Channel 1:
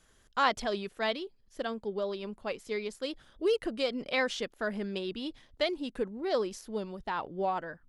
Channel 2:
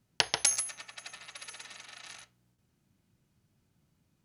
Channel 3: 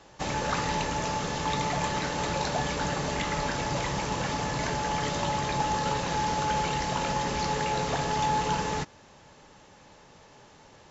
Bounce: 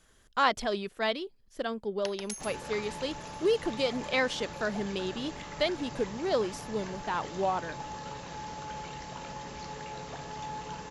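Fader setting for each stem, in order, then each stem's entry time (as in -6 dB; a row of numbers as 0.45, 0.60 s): +1.5, -13.5, -12.5 dB; 0.00, 1.85, 2.20 s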